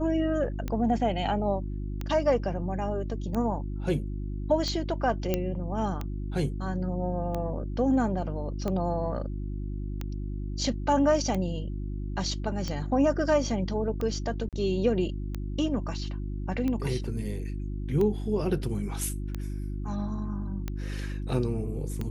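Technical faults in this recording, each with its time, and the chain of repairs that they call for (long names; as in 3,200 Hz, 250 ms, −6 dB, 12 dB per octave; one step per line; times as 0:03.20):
mains hum 50 Hz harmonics 7 −33 dBFS
scratch tick 45 rpm −19 dBFS
0:05.34: click −12 dBFS
0:14.49–0:14.53: drop-out 37 ms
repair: click removal
hum removal 50 Hz, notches 7
repair the gap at 0:14.49, 37 ms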